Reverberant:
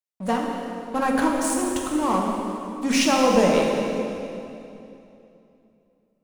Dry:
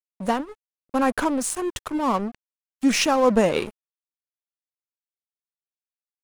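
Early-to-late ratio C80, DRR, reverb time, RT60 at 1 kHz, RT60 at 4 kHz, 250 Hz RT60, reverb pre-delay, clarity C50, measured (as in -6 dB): 2.0 dB, -1.5 dB, 2.8 s, 2.7 s, 2.4 s, 3.2 s, 3 ms, 0.5 dB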